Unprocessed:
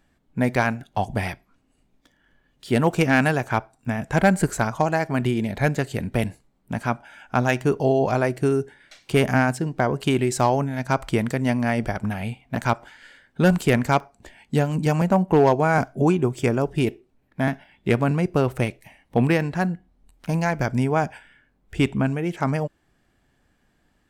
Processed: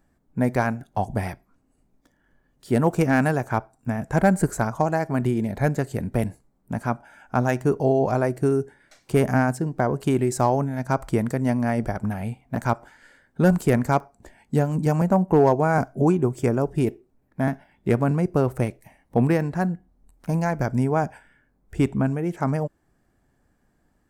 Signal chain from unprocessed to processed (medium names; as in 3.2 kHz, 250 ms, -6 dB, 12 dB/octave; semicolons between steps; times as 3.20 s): peaking EQ 3.1 kHz -11.5 dB 1.4 oct